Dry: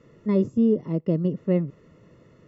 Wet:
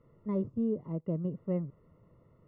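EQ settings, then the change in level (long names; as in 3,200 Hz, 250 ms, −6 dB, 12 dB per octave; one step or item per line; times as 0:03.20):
Savitzky-Golay smoothing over 65 samples
high-frequency loss of the air 97 metres
parametric band 310 Hz −12 dB 2.9 octaves
0.0 dB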